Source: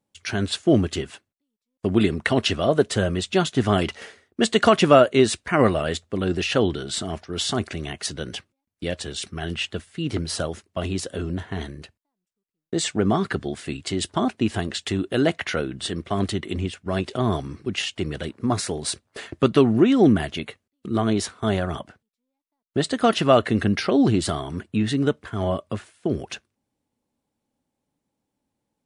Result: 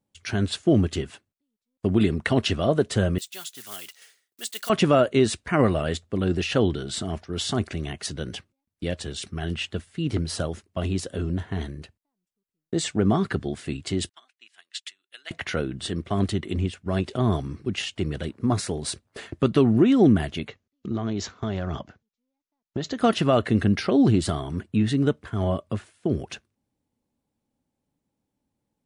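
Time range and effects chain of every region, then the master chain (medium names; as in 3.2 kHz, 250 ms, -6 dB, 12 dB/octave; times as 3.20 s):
3.18–4.70 s: block-companded coder 5-bit + differentiator
14.09–15.31 s: Chebyshev high-pass 2.2 kHz + upward expansion 2.5:1, over -43 dBFS
20.48–22.98 s: low-pass 8.9 kHz + compression, threshold -22 dBFS + careless resampling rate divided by 3×, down none, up filtered
whole clip: bass shelf 270 Hz +6.5 dB; loudness maximiser +4 dB; trim -7.5 dB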